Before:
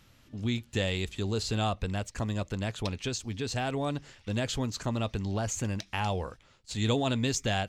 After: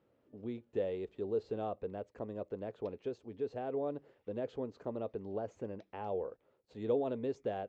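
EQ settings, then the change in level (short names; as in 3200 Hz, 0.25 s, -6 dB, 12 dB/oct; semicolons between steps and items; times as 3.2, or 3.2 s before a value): band-pass 460 Hz, Q 2.7; air absorption 77 m; +1.5 dB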